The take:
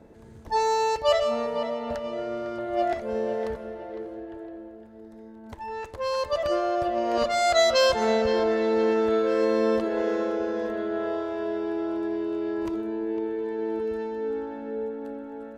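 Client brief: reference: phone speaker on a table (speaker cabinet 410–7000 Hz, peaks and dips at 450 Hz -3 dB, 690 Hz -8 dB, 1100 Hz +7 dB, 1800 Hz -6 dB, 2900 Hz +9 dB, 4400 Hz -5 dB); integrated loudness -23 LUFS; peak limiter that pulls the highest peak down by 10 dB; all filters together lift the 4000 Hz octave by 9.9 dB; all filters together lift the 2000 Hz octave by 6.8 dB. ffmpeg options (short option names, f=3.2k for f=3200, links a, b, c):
-af "equalizer=f=2k:t=o:g=7.5,equalizer=f=4k:t=o:g=6.5,alimiter=limit=-17dB:level=0:latency=1,highpass=f=410:w=0.5412,highpass=f=410:w=1.3066,equalizer=f=450:t=q:w=4:g=-3,equalizer=f=690:t=q:w=4:g=-8,equalizer=f=1.1k:t=q:w=4:g=7,equalizer=f=1.8k:t=q:w=4:g=-6,equalizer=f=2.9k:t=q:w=4:g=9,equalizer=f=4.4k:t=q:w=4:g=-5,lowpass=f=7k:w=0.5412,lowpass=f=7k:w=1.3066,volume=6dB"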